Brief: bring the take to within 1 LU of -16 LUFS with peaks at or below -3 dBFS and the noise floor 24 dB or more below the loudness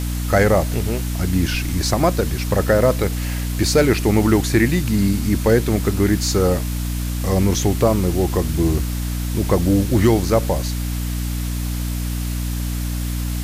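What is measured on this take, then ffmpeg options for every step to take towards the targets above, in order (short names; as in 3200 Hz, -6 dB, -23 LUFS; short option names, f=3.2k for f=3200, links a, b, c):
hum 60 Hz; harmonics up to 300 Hz; hum level -21 dBFS; noise floor -24 dBFS; noise floor target -44 dBFS; loudness -19.5 LUFS; peak -3.0 dBFS; loudness target -16.0 LUFS
-> -af "bandreject=f=60:t=h:w=4,bandreject=f=120:t=h:w=4,bandreject=f=180:t=h:w=4,bandreject=f=240:t=h:w=4,bandreject=f=300:t=h:w=4"
-af "afftdn=nr=20:nf=-24"
-af "volume=3.5dB,alimiter=limit=-3dB:level=0:latency=1"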